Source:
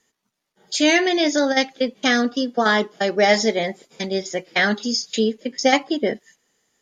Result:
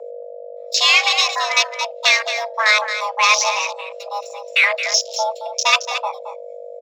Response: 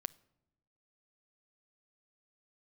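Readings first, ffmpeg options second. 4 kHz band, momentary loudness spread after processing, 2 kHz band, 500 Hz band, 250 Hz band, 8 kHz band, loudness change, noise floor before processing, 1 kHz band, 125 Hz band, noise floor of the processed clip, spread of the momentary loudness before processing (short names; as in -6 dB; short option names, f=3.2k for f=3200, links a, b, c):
+6.5 dB, 20 LU, +5.0 dB, -5.5 dB, under -40 dB, +7.0 dB, +3.5 dB, -79 dBFS, +4.0 dB, under -40 dB, -35 dBFS, 9 LU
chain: -filter_complex "[0:a]highpass=f=190:w=0.5412,highpass=f=190:w=1.3066,bandreject=f=60:t=h:w=6,bandreject=f=120:t=h:w=6,bandreject=f=180:t=h:w=6,bandreject=f=240:t=h:w=6,bandreject=f=300:t=h:w=6,bandreject=f=360:t=h:w=6,bandreject=f=420:t=h:w=6,bandreject=f=480:t=h:w=6,bandreject=f=540:t=h:w=6,acrossover=split=330[a][b];[a]aecho=1:1:4.7:0.92[c];[b]adynamicsmooth=sensitivity=4:basefreq=5.3k[d];[c][d]amix=inputs=2:normalize=0,tiltshelf=f=970:g=-9,acontrast=61,afwtdn=0.178,aeval=exprs='val(0)+0.0398*(sin(2*PI*50*n/s)+sin(2*PI*2*50*n/s)/2+sin(2*PI*3*50*n/s)/3+sin(2*PI*4*50*n/s)/4+sin(2*PI*5*50*n/s)/5)':c=same,afreqshift=430,asplit=2[e][f];[f]aecho=0:1:222:0.316[g];[e][g]amix=inputs=2:normalize=0,volume=-3.5dB"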